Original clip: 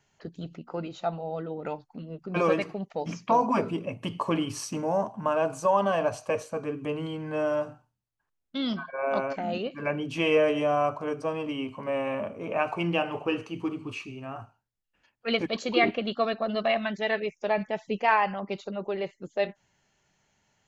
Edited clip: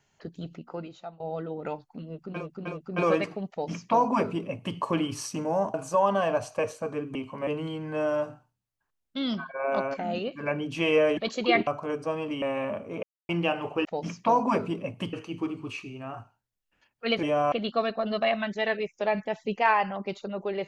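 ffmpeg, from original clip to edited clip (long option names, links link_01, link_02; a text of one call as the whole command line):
ffmpeg -i in.wav -filter_complex "[0:a]asplit=16[link_01][link_02][link_03][link_04][link_05][link_06][link_07][link_08][link_09][link_10][link_11][link_12][link_13][link_14][link_15][link_16];[link_01]atrim=end=1.2,asetpts=PTS-STARTPTS,afade=type=out:start_time=0.58:duration=0.62:silence=0.0841395[link_17];[link_02]atrim=start=1.2:end=2.47,asetpts=PTS-STARTPTS,afade=type=in:duration=0.004:curve=hsin:silence=0.0841395[link_18];[link_03]atrim=start=1.92:end=2.47[link_19];[link_04]atrim=start=1.92:end=5.122[link_20];[link_05]atrim=start=5.448:end=6.862[link_21];[link_06]atrim=start=11.598:end=11.922[link_22];[link_07]atrim=start=6.858:end=10.562[link_23];[link_08]atrim=start=15.448:end=15.952[link_24];[link_09]atrim=start=10.848:end=11.602[link_25];[link_10]atrim=start=11.918:end=12.53,asetpts=PTS-STARTPTS,afade=type=out:start_time=0.608:duration=0.004:curve=hsin[link_26];[link_11]atrim=start=12.53:end=12.79,asetpts=PTS-STARTPTS,volume=0[link_27];[link_12]atrim=start=12.79:end=13.352,asetpts=PTS-STARTPTS,afade=type=in:duration=0.004:curve=hsin[link_28];[link_13]atrim=start=2.878:end=4.162[link_29];[link_14]atrim=start=13.348:end=15.452[link_30];[link_15]atrim=start=10.558:end=10.852[link_31];[link_16]atrim=start=15.948[link_32];[link_17][link_18]concat=n=2:v=0:a=1[link_33];[link_33][link_19]acrossfade=duration=0.24:curve1=tri:curve2=tri[link_34];[link_34][link_20]acrossfade=duration=0.24:curve1=tri:curve2=tri[link_35];[link_35][link_21]acrossfade=duration=0.004:curve1=hsin:curve2=hsin[link_36];[link_36][link_22]acrossfade=duration=0.004:curve1=hsin:curve2=hsin[link_37];[link_37][link_23]acrossfade=duration=0.004:curve1=hsin:curve2=hsin[link_38];[link_38][link_24]acrossfade=duration=0.004:curve1=hsin:curve2=hsin[link_39];[link_39][link_25]acrossfade=duration=0.004:curve1=hsin:curve2=hsin[link_40];[link_26][link_27][link_28]concat=n=3:v=0:a=1[link_41];[link_40][link_41]acrossfade=duration=0.004:curve1=hsin:curve2=hsin[link_42];[link_42][link_29]acrossfade=duration=0.004:curve1=hsin:curve2=hsin[link_43];[link_43][link_30]acrossfade=duration=0.004:curve1=hsin:curve2=hsin[link_44];[link_44][link_31]acrossfade=duration=0.004:curve1=hsin:curve2=hsin[link_45];[link_45][link_32]acrossfade=duration=0.004:curve1=hsin:curve2=hsin" out.wav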